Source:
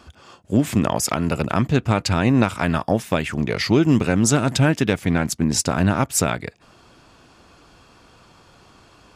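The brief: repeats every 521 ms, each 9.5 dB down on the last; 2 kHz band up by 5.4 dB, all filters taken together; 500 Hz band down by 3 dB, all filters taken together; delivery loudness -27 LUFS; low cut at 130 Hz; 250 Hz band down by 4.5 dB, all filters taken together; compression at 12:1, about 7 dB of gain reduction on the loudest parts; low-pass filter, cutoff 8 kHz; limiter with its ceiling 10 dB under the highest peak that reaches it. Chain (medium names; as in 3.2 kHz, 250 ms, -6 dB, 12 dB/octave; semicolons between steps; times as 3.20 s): high-pass 130 Hz; low-pass 8 kHz; peaking EQ 250 Hz -4.5 dB; peaking EQ 500 Hz -3 dB; peaking EQ 2 kHz +7.5 dB; compression 12:1, threshold -21 dBFS; peak limiter -15.5 dBFS; feedback delay 521 ms, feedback 33%, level -9.5 dB; trim +1.5 dB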